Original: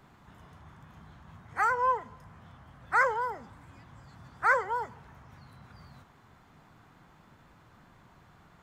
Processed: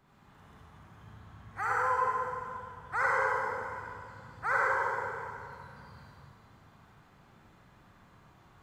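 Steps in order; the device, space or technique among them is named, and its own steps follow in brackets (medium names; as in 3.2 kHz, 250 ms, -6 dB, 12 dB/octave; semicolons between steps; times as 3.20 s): tunnel (flutter echo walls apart 11.3 m, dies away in 0.45 s; reverberation RT60 2.3 s, pre-delay 43 ms, DRR -6 dB); trim -8.5 dB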